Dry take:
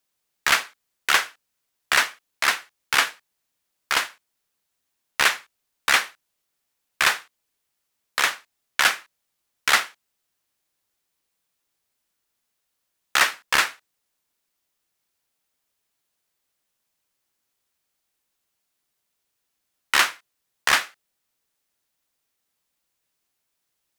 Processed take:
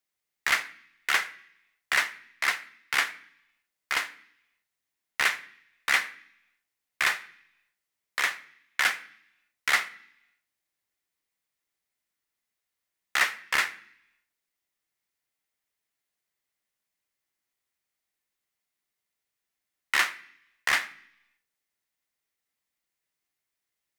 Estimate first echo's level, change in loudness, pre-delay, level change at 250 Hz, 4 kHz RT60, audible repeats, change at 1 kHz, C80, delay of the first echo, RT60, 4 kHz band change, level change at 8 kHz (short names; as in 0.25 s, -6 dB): none, -5.5 dB, 3 ms, -8.0 dB, 0.95 s, none, -7.5 dB, 20.5 dB, none, 0.70 s, -8.0 dB, -8.5 dB